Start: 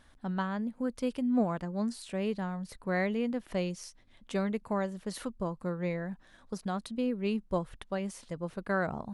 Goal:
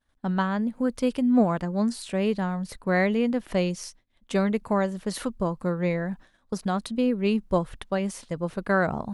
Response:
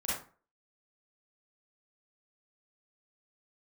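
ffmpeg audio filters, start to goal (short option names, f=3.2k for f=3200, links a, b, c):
-af "agate=range=-33dB:threshold=-47dB:ratio=3:detection=peak,volume=7.5dB"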